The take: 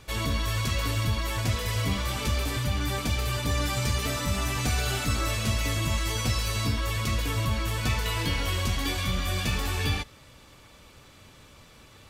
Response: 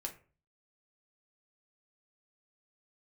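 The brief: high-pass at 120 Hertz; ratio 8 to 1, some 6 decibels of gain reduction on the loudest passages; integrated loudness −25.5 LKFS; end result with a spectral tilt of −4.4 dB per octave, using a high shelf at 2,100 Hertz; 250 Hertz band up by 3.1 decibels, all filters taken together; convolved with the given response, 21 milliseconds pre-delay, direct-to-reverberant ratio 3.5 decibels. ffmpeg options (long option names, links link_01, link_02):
-filter_complex "[0:a]highpass=120,equalizer=frequency=250:width_type=o:gain=4.5,highshelf=frequency=2100:gain=-4.5,acompressor=threshold=-30dB:ratio=8,asplit=2[link_01][link_02];[1:a]atrim=start_sample=2205,adelay=21[link_03];[link_02][link_03]afir=irnorm=-1:irlink=0,volume=-2dB[link_04];[link_01][link_04]amix=inputs=2:normalize=0,volume=7.5dB"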